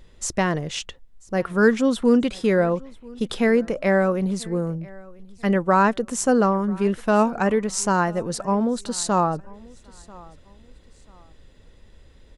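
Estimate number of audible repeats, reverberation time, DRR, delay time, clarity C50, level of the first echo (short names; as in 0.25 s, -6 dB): 2, none, none, 0.989 s, none, -23.5 dB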